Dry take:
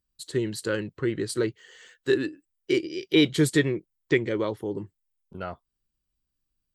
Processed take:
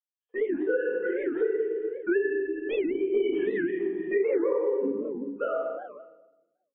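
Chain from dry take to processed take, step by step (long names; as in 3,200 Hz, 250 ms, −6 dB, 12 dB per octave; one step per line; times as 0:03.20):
three sine waves on the formant tracks
0:00.52–0:02.87: parametric band 230 Hz −14.5 dB 0.94 octaves
noise gate −47 dBFS, range −33 dB
comb filter 4.1 ms, depth 77%
single-tap delay 418 ms −23.5 dB
rectangular room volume 410 cubic metres, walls mixed, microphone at 6.2 metres
downward compressor 4 to 1, threshold −30 dBFS, peak gain reduction 19.5 dB
low-pass filter 1,100 Hz 6 dB per octave
parametric band 690 Hz +7.5 dB 2.1 octaves
wow of a warped record 78 rpm, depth 250 cents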